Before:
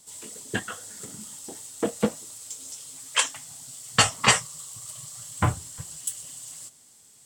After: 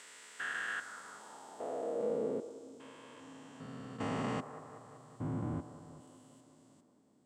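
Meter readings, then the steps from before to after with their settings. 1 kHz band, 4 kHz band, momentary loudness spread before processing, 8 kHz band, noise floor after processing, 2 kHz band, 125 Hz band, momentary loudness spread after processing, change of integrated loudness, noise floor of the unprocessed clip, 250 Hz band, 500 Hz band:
-13.5 dB, -25.0 dB, 18 LU, -27.5 dB, -68 dBFS, -12.0 dB, -11.0 dB, 17 LU, -12.0 dB, -55 dBFS, -7.0 dB, -4.0 dB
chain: stepped spectrum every 0.4 s; band-limited delay 0.19 s, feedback 67%, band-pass 760 Hz, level -10 dB; band-pass sweep 1700 Hz -> 270 Hz, 0.7–2.78; gain +8 dB

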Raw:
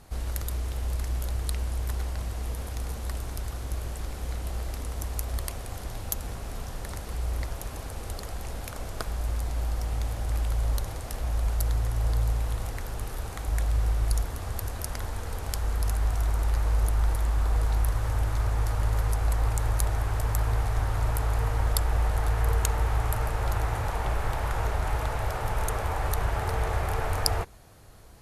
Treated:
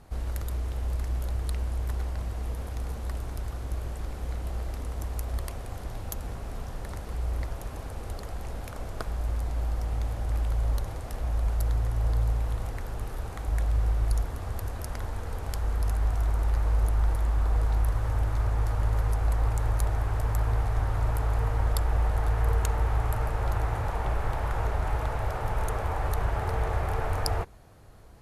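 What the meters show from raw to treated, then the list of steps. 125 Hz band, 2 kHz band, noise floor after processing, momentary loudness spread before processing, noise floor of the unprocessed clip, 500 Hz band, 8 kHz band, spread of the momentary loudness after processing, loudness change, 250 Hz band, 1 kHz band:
0.0 dB, -2.5 dB, -38 dBFS, 9 LU, -37 dBFS, -0.5 dB, -7.5 dB, 10 LU, -0.5 dB, 0.0 dB, -1.0 dB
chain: high shelf 2500 Hz -8 dB

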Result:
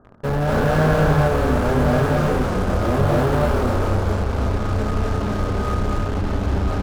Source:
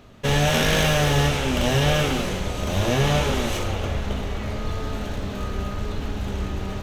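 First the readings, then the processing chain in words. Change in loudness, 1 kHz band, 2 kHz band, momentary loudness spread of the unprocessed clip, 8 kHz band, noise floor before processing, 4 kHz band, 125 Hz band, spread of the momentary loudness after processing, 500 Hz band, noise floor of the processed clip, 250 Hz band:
+3.0 dB, +4.5 dB, -1.0 dB, 11 LU, -9.0 dB, -31 dBFS, -10.0 dB, +4.0 dB, 6 LU, +5.0 dB, -24 dBFS, +4.5 dB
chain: Chebyshev low-pass 1600 Hz, order 6; in parallel at -12 dB: fuzz box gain 41 dB, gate -42 dBFS; on the sum: loudspeakers at several distances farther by 83 m -1 dB, 94 m -2 dB; gain -3 dB

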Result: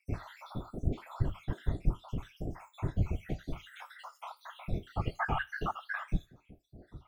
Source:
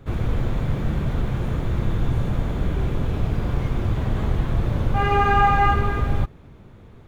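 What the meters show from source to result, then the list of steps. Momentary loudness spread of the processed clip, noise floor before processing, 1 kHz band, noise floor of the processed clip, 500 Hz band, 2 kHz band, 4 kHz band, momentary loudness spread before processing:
13 LU, -46 dBFS, -18.0 dB, -69 dBFS, -15.5 dB, -11.5 dB, -13.0 dB, 8 LU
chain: random spectral dropouts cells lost 77%; in parallel at +0.5 dB: compressor, threshold -34 dBFS, peak gain reduction 17 dB; on the sum: resonator 320 Hz, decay 0.18 s, harmonics all, mix 90%; whisperiser; thin delay 81 ms, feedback 44%, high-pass 2300 Hz, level -20 dB; gain +1.5 dB

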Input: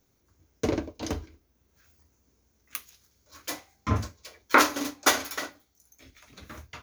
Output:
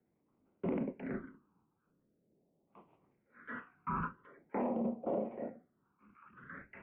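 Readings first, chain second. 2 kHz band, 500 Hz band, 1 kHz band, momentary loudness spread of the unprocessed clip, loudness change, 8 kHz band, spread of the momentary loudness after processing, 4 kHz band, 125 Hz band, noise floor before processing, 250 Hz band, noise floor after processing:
-19.5 dB, -6.5 dB, -14.0 dB, 19 LU, -11.5 dB, under -40 dB, 17 LU, under -40 dB, -12.5 dB, -70 dBFS, -5.5 dB, -79 dBFS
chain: mistuned SSB -56 Hz 190–2700 Hz; transient shaper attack -7 dB, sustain +7 dB; LFO low-pass sine 0.34 Hz 590–1600 Hz; phaser stages 12, 0.45 Hz, lowest notch 600–1700 Hz; limiter -23.5 dBFS, peak gain reduction 11 dB; gain -3 dB

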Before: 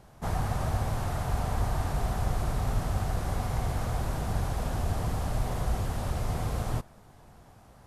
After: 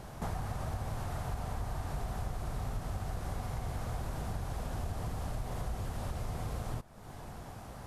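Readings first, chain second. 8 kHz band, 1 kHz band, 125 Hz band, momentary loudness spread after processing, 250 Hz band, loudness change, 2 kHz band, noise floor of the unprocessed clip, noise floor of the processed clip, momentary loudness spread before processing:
-7.0 dB, -7.5 dB, -7.5 dB, 5 LU, -7.0 dB, -8.0 dB, -7.0 dB, -54 dBFS, -48 dBFS, 2 LU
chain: compressor 4:1, threshold -45 dBFS, peak gain reduction 18.5 dB; gain +8 dB

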